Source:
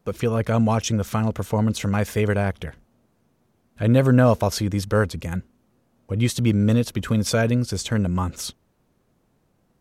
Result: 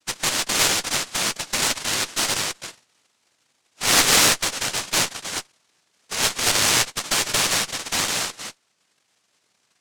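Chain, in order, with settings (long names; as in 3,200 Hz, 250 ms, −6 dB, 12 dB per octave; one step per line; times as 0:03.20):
cochlear-implant simulation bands 1
pitch vibrato 1 Hz 18 cents
harmonic generator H 4 −10 dB, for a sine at −2 dBFS
level −2 dB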